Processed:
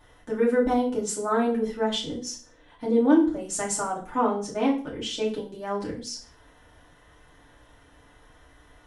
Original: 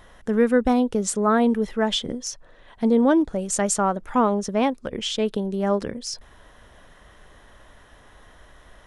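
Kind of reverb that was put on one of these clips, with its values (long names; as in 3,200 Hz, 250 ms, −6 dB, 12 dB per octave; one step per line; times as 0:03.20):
feedback delay network reverb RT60 0.4 s, low-frequency decay 1.25×, high-frequency decay 0.95×, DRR −6.5 dB
level −11.5 dB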